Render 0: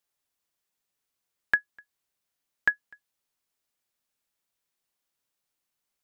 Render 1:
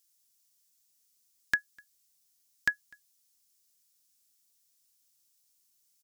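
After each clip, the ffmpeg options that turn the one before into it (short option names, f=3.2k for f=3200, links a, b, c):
-af "firequalizer=gain_entry='entry(290,0);entry(450,-10);entry(5400,13)':delay=0.05:min_phase=1"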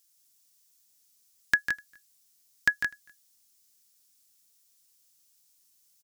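-af "aecho=1:1:149|170:0.335|0.447,volume=4dB"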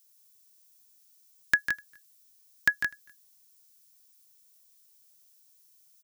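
-af "aexciter=amount=1.4:drive=4.1:freq=11k"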